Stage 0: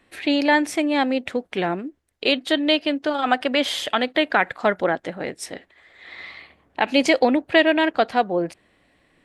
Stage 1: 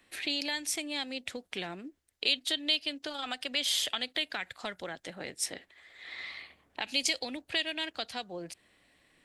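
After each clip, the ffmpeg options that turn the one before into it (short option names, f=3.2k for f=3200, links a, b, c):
-filter_complex "[0:a]highshelf=f=2.3k:g=11,acrossover=split=120|3000[a][b][c];[b]acompressor=threshold=-29dB:ratio=6[d];[a][d][c]amix=inputs=3:normalize=0,volume=-8.5dB"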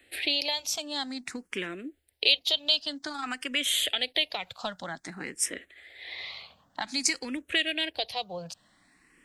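-filter_complex "[0:a]asplit=2[a][b];[b]afreqshift=0.52[c];[a][c]amix=inputs=2:normalize=1,volume=6.5dB"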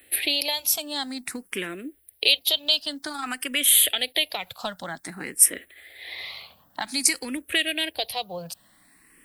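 -af "aexciter=amount=10.5:drive=3.2:freq=9.4k,volume=3dB"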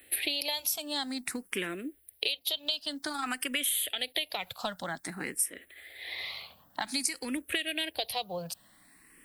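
-af "acompressor=threshold=-25dB:ratio=10,volume=-2dB"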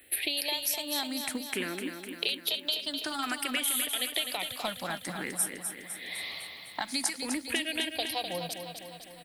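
-af "aecho=1:1:253|506|759|1012|1265|1518|1771|2024:0.447|0.264|0.155|0.0917|0.0541|0.0319|0.0188|0.0111"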